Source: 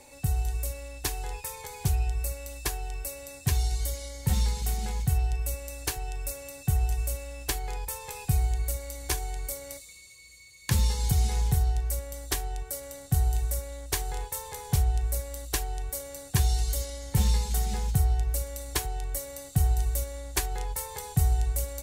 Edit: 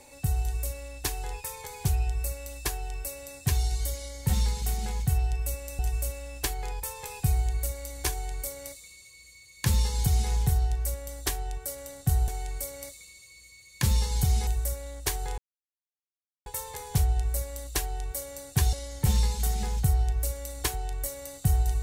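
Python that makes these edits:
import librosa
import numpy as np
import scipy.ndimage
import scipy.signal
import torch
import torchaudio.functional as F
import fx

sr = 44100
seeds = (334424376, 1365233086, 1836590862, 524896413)

y = fx.edit(x, sr, fx.cut(start_s=5.79, length_s=1.05),
    fx.duplicate(start_s=9.16, length_s=2.19, to_s=13.33),
    fx.insert_silence(at_s=14.24, length_s=1.08),
    fx.cut(start_s=16.51, length_s=0.33), tone=tone)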